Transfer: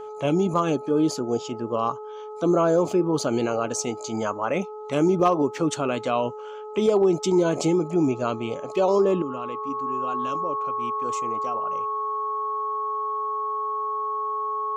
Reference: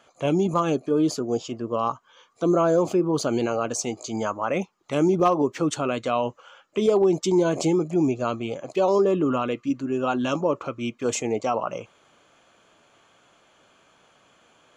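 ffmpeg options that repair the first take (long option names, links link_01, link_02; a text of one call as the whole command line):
ffmpeg -i in.wav -af "bandreject=frequency=426.6:width_type=h:width=4,bandreject=frequency=853.2:width_type=h:width=4,bandreject=frequency=1279.8:width_type=h:width=4,bandreject=frequency=1100:width=30,asetnsamples=nb_out_samples=441:pad=0,asendcmd='9.22 volume volume 10dB',volume=0dB" out.wav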